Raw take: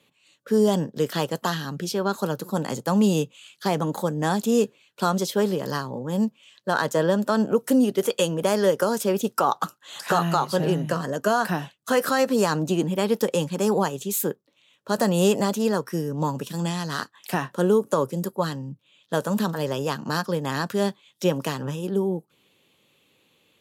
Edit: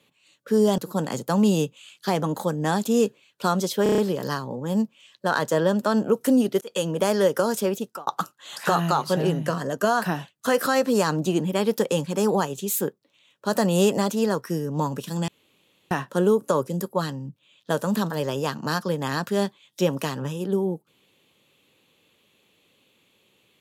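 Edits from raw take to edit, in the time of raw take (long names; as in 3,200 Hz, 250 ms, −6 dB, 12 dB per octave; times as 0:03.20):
0:00.78–0:02.36: remove
0:05.41: stutter 0.03 s, 6 plays
0:08.04–0:08.31: fade in
0:09.04–0:09.50: fade out
0:16.71–0:17.34: fill with room tone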